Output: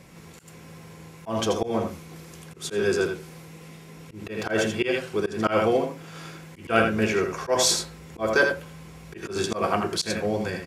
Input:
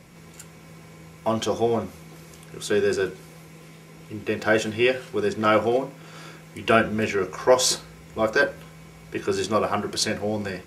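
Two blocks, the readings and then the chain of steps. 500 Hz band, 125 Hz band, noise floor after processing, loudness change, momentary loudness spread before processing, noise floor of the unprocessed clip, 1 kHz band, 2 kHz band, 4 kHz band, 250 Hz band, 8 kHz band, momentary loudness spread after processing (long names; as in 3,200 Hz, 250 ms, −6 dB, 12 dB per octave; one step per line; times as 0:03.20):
−2.0 dB, 0.0 dB, −46 dBFS, −1.5 dB, 18 LU, −47 dBFS, −2.0 dB, −1.0 dB, −0.5 dB, −1.0 dB, 0.0 dB, 22 LU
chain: single-tap delay 82 ms −6.5 dB
volume swells 124 ms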